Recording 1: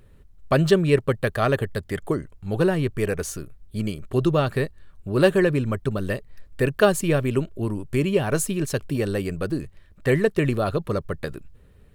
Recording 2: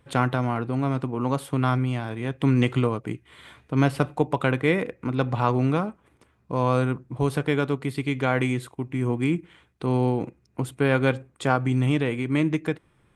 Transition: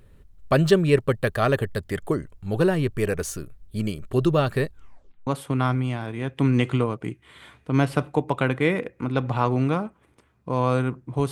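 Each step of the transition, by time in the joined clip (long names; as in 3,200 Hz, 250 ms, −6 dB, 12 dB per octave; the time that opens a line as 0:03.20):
recording 1
0:04.68: tape stop 0.59 s
0:05.27: continue with recording 2 from 0:01.30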